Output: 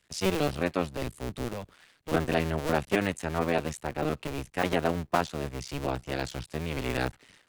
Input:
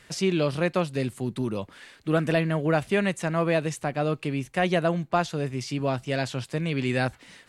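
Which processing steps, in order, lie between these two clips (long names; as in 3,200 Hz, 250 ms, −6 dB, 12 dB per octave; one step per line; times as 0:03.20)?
sub-harmonics by changed cycles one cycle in 2, muted
multiband upward and downward expander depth 40%
level −1 dB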